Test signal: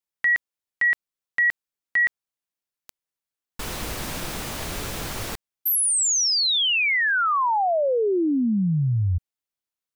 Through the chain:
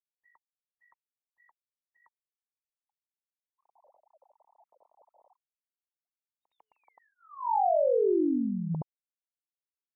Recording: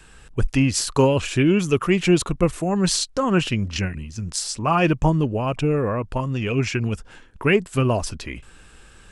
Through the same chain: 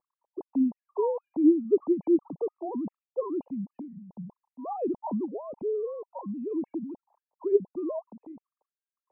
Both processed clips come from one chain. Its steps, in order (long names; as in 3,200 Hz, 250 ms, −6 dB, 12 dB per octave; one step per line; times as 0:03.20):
three sine waves on the formant tracks
elliptic low-pass filter 940 Hz, stop band 40 dB
level −8 dB